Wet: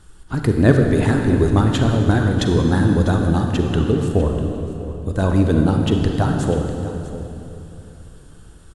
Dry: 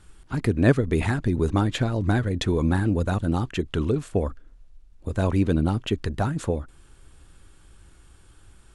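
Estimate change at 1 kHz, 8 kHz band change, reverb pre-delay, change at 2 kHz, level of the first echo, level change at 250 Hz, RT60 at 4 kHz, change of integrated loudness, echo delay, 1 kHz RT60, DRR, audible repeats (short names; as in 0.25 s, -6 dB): +6.0 dB, +6.0 dB, 36 ms, +5.0 dB, -15.0 dB, +7.0 dB, 2.5 s, +6.5 dB, 0.647 s, 2.8 s, 2.5 dB, 1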